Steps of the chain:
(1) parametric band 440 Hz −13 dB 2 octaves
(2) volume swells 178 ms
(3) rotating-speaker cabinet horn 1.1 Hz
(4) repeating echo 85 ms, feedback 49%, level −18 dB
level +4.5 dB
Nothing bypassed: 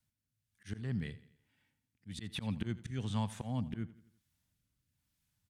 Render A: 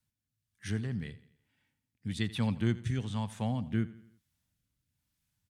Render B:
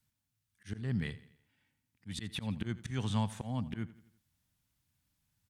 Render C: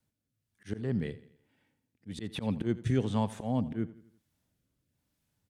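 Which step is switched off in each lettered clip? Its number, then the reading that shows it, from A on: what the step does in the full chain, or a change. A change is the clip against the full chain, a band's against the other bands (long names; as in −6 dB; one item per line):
2, 2 kHz band +2.0 dB
3, change in integrated loudness +2.0 LU
1, 500 Hz band +9.0 dB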